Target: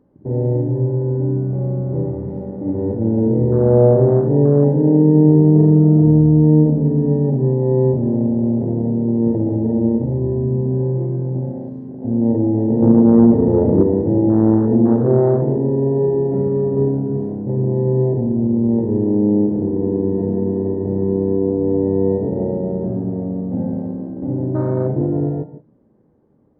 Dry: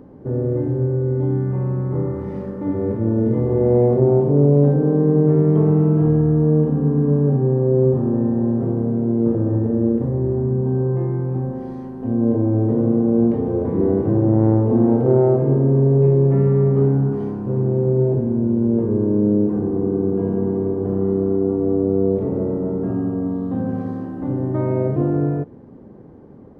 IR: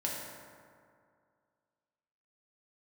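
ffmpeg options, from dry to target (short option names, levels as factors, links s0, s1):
-filter_complex "[0:a]afwtdn=0.0631,asettb=1/sr,asplit=3[s0][s1][s2];[s0]atrim=end=12.824[s3];[s1]atrim=start=12.82:end=13.83,asetpts=PTS-STARTPTS,afade=t=in:d=0.004:c=qsin,afade=t=out:st=1.006:d=0.004:c=qsin,acontrast=51[s4];[s2]atrim=start=13.826[s5];[s3][s4]acrossfade=d=0.004:c1=hsin:c2=qsin[s6];[s6][s5]acrossfade=d=0.004:c1=qsin:c2=hsin,asplit=2[s7][s8];[1:a]atrim=start_sample=2205,afade=t=out:st=0.23:d=0.01,atrim=end_sample=10584[s9];[s8][s9]afir=irnorm=-1:irlink=0,volume=0.376[s10];[s7][s10]amix=inputs=2:normalize=0,volume=0.841"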